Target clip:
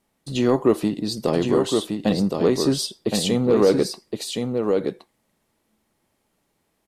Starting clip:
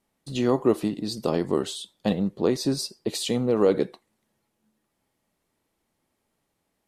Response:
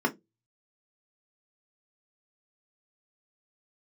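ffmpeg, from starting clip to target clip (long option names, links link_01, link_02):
-af "aecho=1:1:1067:0.562,acontrast=87,volume=-3dB"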